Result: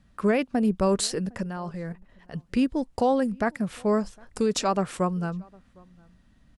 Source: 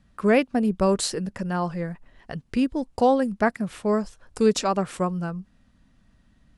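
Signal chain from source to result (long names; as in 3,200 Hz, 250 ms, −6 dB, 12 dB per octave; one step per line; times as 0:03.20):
brickwall limiter −14.5 dBFS, peak gain reduction 6.5 dB
0:01.43–0:02.34: output level in coarse steps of 11 dB
slap from a distant wall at 130 metres, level −27 dB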